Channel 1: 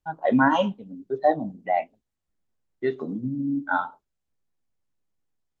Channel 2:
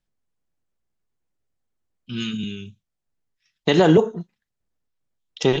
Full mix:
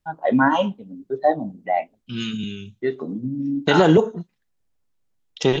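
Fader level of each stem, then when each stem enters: +2.0 dB, 0.0 dB; 0.00 s, 0.00 s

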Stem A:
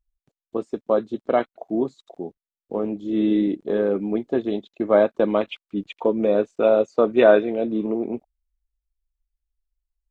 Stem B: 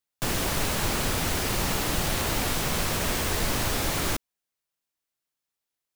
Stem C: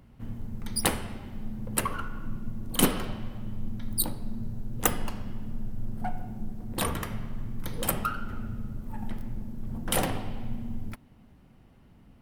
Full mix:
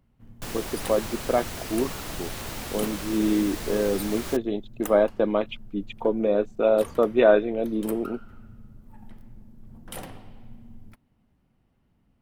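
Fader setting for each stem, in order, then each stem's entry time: -3.0 dB, -8.5 dB, -11.5 dB; 0.00 s, 0.20 s, 0.00 s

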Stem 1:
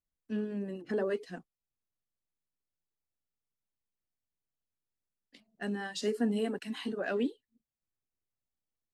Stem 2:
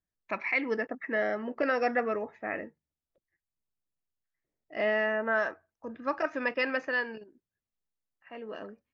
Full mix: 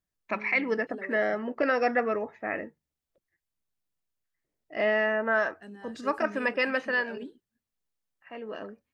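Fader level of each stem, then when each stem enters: -10.5 dB, +2.5 dB; 0.00 s, 0.00 s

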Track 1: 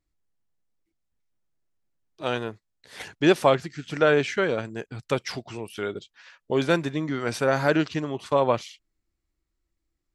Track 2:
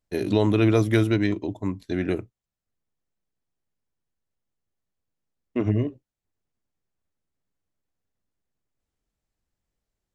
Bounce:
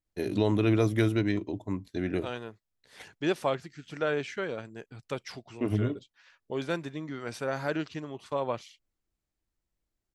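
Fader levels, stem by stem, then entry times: -9.5 dB, -5.0 dB; 0.00 s, 0.05 s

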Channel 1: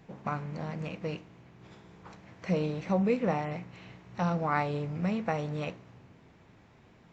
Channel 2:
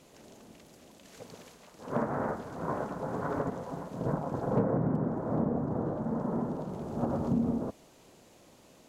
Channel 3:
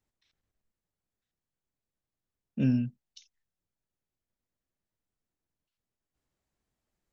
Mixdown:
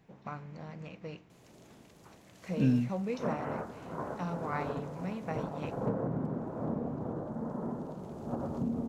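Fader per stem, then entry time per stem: -8.0 dB, -5.0 dB, -1.0 dB; 0.00 s, 1.30 s, 0.00 s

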